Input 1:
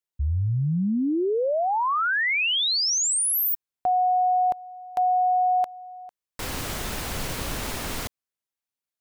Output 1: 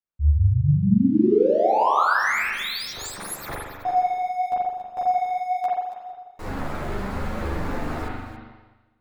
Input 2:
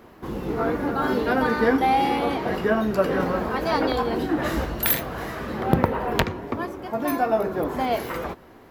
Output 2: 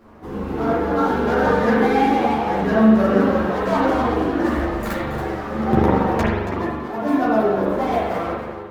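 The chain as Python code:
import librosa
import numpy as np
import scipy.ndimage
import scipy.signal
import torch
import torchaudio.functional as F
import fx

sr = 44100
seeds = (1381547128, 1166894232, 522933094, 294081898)

p1 = scipy.ndimage.median_filter(x, 15, mode='constant')
p2 = p1 + fx.echo_single(p1, sr, ms=278, db=-11.0, dry=0)
p3 = fx.rev_spring(p2, sr, rt60_s=1.2, pass_ms=(41,), chirp_ms=55, drr_db=-5.0)
p4 = fx.ensemble(p3, sr)
y = p4 * librosa.db_to_amplitude(1.5)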